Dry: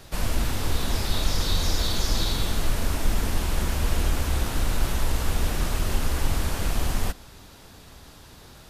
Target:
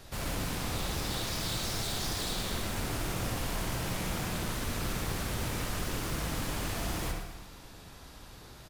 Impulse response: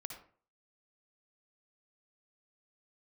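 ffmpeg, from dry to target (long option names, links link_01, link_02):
-filter_complex "[0:a]asettb=1/sr,asplit=3[link_01][link_02][link_03];[link_01]atrim=end=4.334[link_04];[link_02]atrim=start=4.33:end=6.26,asetpts=PTS-STARTPTS,afade=type=in:duration=0.004:curve=qsin,afade=type=out:start_time=1.926:duration=0.004:curve=qsin,asuperstop=centerf=790:order=20:qfactor=5.9[link_05];[link_03]atrim=start=6.256[link_06];[link_04][link_05]acrossfade=duration=0.004:curve1=hsin:curve2=qsin[link_07];[link_07][link_06]acrossfade=duration=0.004:curve1=qsin:curve2=hsin,aeval=exprs='0.0501*(abs(mod(val(0)/0.0501+3,4)-2)-1)':channel_layout=same,aecho=1:1:116|232|348|464|580|696:0.299|0.152|0.0776|0.0396|0.0202|0.0103[link_08];[1:a]atrim=start_sample=2205[link_09];[link_08][link_09]afir=irnorm=-1:irlink=0"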